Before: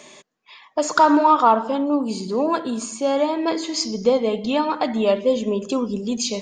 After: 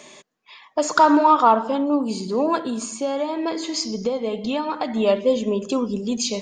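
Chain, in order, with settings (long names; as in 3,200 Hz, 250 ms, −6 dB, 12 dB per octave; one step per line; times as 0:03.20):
0:02.64–0:04.97: downward compressor 4 to 1, threshold −21 dBFS, peak gain reduction 8.5 dB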